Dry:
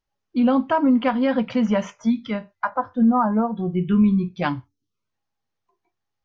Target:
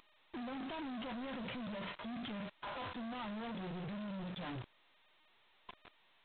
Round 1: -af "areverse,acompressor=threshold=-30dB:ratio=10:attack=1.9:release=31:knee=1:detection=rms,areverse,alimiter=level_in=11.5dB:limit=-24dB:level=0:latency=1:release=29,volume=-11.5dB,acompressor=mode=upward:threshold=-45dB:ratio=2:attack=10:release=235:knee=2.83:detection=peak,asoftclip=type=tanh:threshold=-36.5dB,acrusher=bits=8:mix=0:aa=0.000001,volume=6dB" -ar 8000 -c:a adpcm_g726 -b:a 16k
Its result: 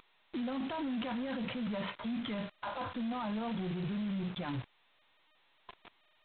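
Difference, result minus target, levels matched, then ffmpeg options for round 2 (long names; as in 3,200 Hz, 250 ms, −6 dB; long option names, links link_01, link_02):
soft clipping: distortion −11 dB
-af "areverse,acompressor=threshold=-30dB:ratio=10:attack=1.9:release=31:knee=1:detection=rms,areverse,alimiter=level_in=11.5dB:limit=-24dB:level=0:latency=1:release=29,volume=-11.5dB,acompressor=mode=upward:threshold=-45dB:ratio=2:attack=10:release=235:knee=2.83:detection=peak,asoftclip=type=tanh:threshold=-46dB,acrusher=bits=8:mix=0:aa=0.000001,volume=6dB" -ar 8000 -c:a adpcm_g726 -b:a 16k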